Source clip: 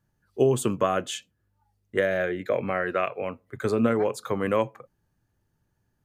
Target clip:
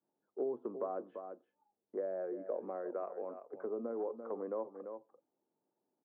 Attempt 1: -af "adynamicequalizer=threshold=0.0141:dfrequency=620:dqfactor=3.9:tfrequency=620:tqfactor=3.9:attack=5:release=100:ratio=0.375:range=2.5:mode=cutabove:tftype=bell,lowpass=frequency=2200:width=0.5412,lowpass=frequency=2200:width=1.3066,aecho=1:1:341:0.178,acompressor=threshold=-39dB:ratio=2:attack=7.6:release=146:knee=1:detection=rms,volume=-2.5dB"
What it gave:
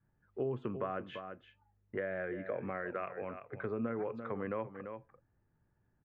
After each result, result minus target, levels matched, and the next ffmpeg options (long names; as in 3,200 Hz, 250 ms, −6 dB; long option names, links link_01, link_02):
2,000 Hz band +16.5 dB; 250 Hz band +3.0 dB
-af "adynamicequalizer=threshold=0.0141:dfrequency=620:dqfactor=3.9:tfrequency=620:tqfactor=3.9:attack=5:release=100:ratio=0.375:range=2.5:mode=cutabove:tftype=bell,lowpass=frequency=920:width=0.5412,lowpass=frequency=920:width=1.3066,aecho=1:1:341:0.178,acompressor=threshold=-39dB:ratio=2:attack=7.6:release=146:knee=1:detection=rms,volume=-2.5dB"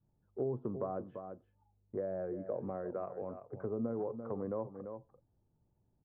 250 Hz band +3.5 dB
-af "adynamicequalizer=threshold=0.0141:dfrequency=620:dqfactor=3.9:tfrequency=620:tqfactor=3.9:attack=5:release=100:ratio=0.375:range=2.5:mode=cutabove:tftype=bell,lowpass=frequency=920:width=0.5412,lowpass=frequency=920:width=1.3066,aecho=1:1:341:0.178,acompressor=threshold=-39dB:ratio=2:attack=7.6:release=146:knee=1:detection=rms,highpass=frequency=280:width=0.5412,highpass=frequency=280:width=1.3066,volume=-2.5dB"